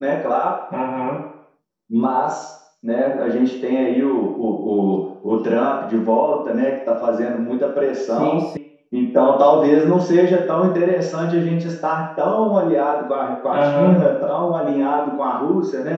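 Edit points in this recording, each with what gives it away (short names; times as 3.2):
8.57 sound cut off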